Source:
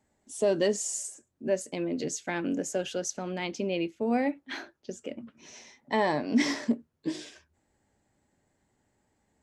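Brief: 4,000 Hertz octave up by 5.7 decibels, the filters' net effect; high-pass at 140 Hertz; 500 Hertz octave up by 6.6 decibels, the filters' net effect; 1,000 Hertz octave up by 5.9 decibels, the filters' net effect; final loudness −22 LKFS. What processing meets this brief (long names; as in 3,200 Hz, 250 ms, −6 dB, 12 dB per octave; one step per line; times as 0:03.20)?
high-pass filter 140 Hz
parametric band 500 Hz +7 dB
parametric band 1,000 Hz +4.5 dB
parametric band 4,000 Hz +7.5 dB
level +4 dB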